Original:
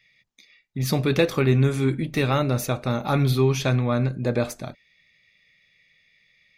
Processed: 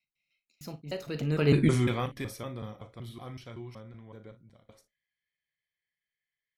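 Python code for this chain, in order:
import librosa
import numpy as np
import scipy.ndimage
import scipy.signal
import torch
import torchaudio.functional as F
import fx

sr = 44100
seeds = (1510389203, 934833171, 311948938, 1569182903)

y = fx.block_reorder(x, sr, ms=170.0, group=2)
y = fx.doppler_pass(y, sr, speed_mps=36, closest_m=2.6, pass_at_s=1.64)
y = fx.room_early_taps(y, sr, ms=(39, 57), db=(-13.0, -17.0))
y = y * librosa.db_to_amplitude(4.5)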